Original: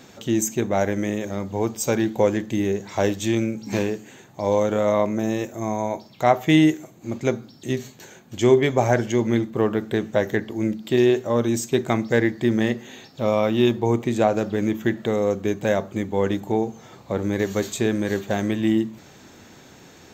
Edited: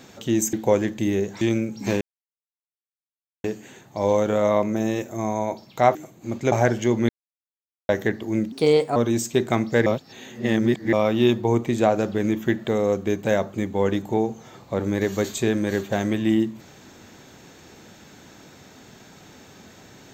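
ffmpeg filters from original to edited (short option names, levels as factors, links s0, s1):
-filter_complex "[0:a]asplit=12[s0][s1][s2][s3][s4][s5][s6][s7][s8][s9][s10][s11];[s0]atrim=end=0.532[s12];[s1]atrim=start=2.048:end=2.932[s13];[s2]atrim=start=3.268:end=3.87,asetpts=PTS-STARTPTS,afade=t=out:st=0.598:d=0.004:c=hsin,apad=pad_dur=1.43[s14];[s3]atrim=start=3.87:end=6.382,asetpts=PTS-STARTPTS,afade=t=in:d=0.004:c=hsin[s15];[s4]atrim=start=6.748:end=7.322[s16];[s5]atrim=start=8.798:end=9.37,asetpts=PTS-STARTPTS,afade=t=out:st=0.568:d=0.004:c=hsin[s17];[s6]atrim=start=9.37:end=10.17,asetpts=PTS-STARTPTS,volume=0[s18];[s7]atrim=start=10.17:end=10.804,asetpts=PTS-STARTPTS,afade=t=in:d=0.004:c=hsin[s19];[s8]atrim=start=10.8:end=11.34,asetpts=PTS-STARTPTS,asetrate=54243,aresample=44100[s20];[s9]atrim=start=11.336:end=12.242[s21];[s10]atrim=start=12.238:end=13.312,asetpts=PTS-STARTPTS,areverse[s22];[s11]atrim=start=13.308[s23];[s12][s13]acrossfade=d=0.004:c1=hsin:c2=hsin[s24];[s14][s15]concat=n=2:v=0:a=1[s25];[s24][s25]acrossfade=d=0.004:c1=hsin:c2=hsin[s26];[s26][s16]acrossfade=d=0.004:c1=hsin:c2=hsin[s27];[s17][s18][s19]concat=n=3:v=0:a=1[s28];[s27][s28]acrossfade=d=0.004:c1=hsin:c2=hsin[s29];[s29][s20]acrossfade=d=0.004:c1=hsin:c2=hsin[s30];[s30][s21]acrossfade=d=0.004:c1=hsin:c2=hsin[s31];[s31][s22]acrossfade=d=0.004:c1=hsin:c2=hsin[s32];[s32][s23]acrossfade=d=0.004:c1=hsin:c2=hsin"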